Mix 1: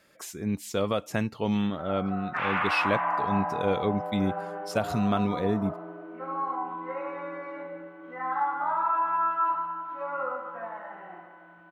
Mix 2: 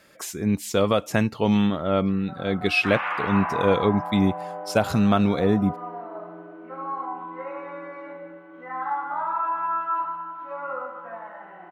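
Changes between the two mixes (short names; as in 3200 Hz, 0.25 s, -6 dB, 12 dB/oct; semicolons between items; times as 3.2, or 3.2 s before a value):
speech +6.5 dB; background: entry +0.50 s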